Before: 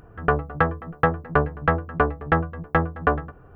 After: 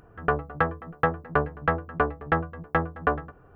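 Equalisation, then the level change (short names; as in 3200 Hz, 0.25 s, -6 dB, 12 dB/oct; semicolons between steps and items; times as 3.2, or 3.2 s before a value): low shelf 180 Hz -4.5 dB; -3.0 dB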